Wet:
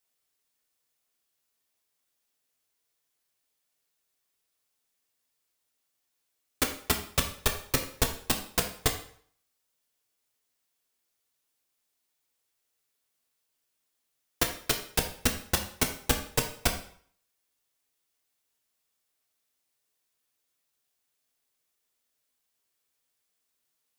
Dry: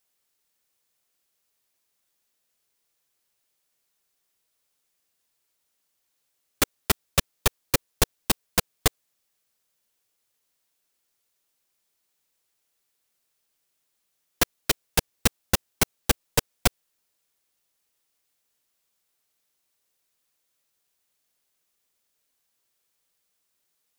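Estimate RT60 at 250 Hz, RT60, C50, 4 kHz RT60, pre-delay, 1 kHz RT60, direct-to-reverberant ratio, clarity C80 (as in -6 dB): 0.50 s, 0.55 s, 9.5 dB, 0.50 s, 3 ms, 0.55 s, 3.0 dB, 12.5 dB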